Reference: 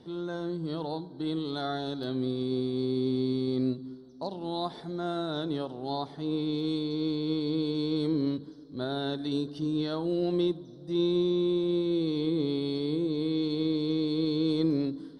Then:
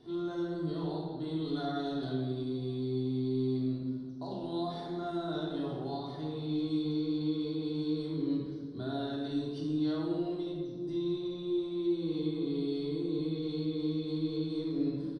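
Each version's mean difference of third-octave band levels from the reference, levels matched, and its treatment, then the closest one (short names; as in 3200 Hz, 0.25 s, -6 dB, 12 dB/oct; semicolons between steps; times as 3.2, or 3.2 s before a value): 4.0 dB: limiter -28 dBFS, peak gain reduction 10.5 dB; shoebox room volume 1100 m³, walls mixed, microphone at 3.2 m; downsampling 22050 Hz; gain -7 dB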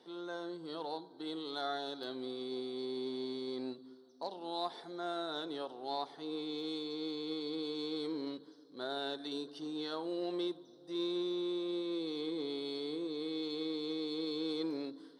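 6.0 dB: in parallel at -10.5 dB: hard clip -27 dBFS, distortion -12 dB; on the sum: HPF 470 Hz 12 dB/oct; notch 610 Hz, Q 15; gain -5 dB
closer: first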